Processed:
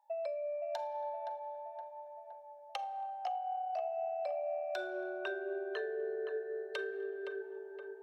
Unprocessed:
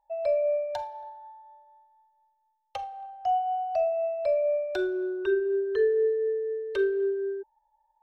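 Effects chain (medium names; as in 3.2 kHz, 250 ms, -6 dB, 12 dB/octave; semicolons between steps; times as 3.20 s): high-pass 550 Hz 24 dB/octave; compression 10:1, threshold -38 dBFS, peak gain reduction 15 dB; on a send: tape echo 518 ms, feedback 66%, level -5 dB, low-pass 1.7 kHz; on the sum: trim +1.5 dB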